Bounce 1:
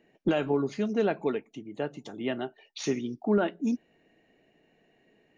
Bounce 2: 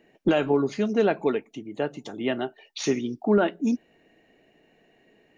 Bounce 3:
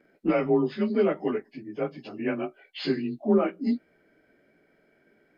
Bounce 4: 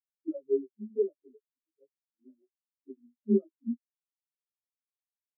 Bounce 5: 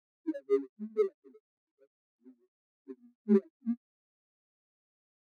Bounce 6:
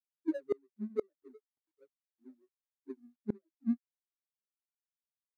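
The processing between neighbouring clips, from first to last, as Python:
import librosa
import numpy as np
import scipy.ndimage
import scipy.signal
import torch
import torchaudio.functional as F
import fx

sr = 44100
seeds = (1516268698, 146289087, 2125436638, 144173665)

y1 = fx.peak_eq(x, sr, hz=150.0, db=-2.5, octaves=1.2)
y1 = F.gain(torch.from_numpy(y1), 5.0).numpy()
y2 = fx.partial_stretch(y1, sr, pct=91)
y3 = fx.spectral_expand(y2, sr, expansion=4.0)
y3 = F.gain(torch.from_numpy(y3), -3.5).numpy()
y4 = scipy.signal.medfilt(y3, 41)
y5 = fx.gate_flip(y4, sr, shuts_db=-22.0, range_db=-34)
y5 = F.gain(torch.from_numpy(y5), 2.0).numpy()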